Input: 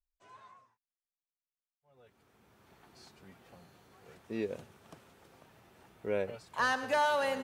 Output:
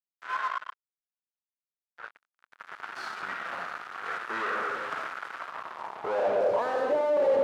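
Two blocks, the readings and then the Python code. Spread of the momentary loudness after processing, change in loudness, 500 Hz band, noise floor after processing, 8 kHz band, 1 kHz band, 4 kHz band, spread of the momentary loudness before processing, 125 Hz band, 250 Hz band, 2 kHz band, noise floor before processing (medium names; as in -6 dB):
20 LU, +2.5 dB, +9.5 dB, under -85 dBFS, -3.5 dB, +5.0 dB, -1.0 dB, 14 LU, -4.5 dB, 0.0 dB, +3.5 dB, under -85 dBFS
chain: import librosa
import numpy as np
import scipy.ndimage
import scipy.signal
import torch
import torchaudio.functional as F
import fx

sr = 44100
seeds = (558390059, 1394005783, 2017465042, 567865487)

y = fx.rev_freeverb(x, sr, rt60_s=0.9, hf_ratio=0.8, predelay_ms=15, drr_db=2.0)
y = fx.fuzz(y, sr, gain_db=56.0, gate_db=-56.0)
y = fx.filter_sweep_bandpass(y, sr, from_hz=1400.0, to_hz=480.0, start_s=5.3, end_s=6.96, q=3.4)
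y = y * librosa.db_to_amplitude(-3.5)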